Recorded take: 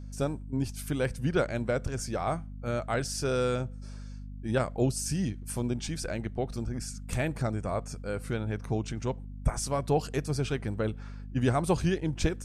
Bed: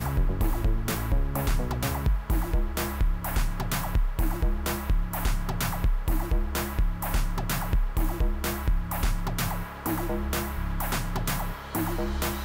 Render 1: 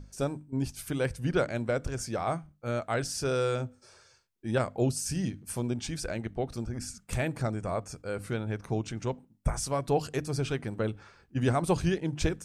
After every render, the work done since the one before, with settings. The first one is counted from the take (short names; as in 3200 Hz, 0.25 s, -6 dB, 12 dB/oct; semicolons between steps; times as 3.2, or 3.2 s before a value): notches 50/100/150/200/250/300 Hz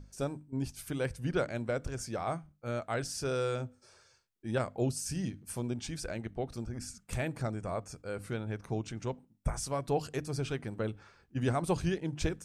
gain -4 dB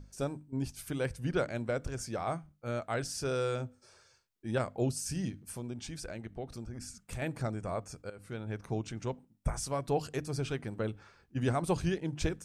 5.36–7.22 compressor 1.5:1, threshold -43 dBFS; 8.1–8.57 fade in, from -15 dB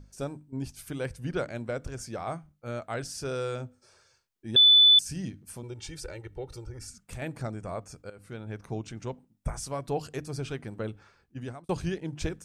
4.56–4.99 bleep 3490 Hz -13.5 dBFS; 5.63–6.9 comb 2.2 ms, depth 88%; 10.85–11.69 fade out equal-power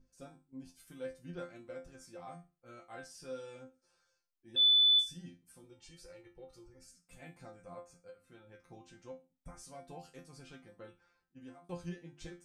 resonator bank F3 fifth, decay 0.27 s